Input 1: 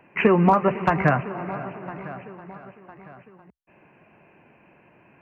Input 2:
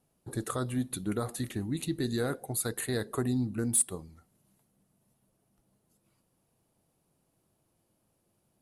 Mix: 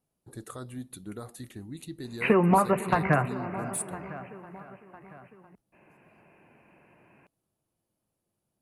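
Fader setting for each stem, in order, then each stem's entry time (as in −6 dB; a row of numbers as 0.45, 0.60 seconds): −4.0, −8.0 decibels; 2.05, 0.00 seconds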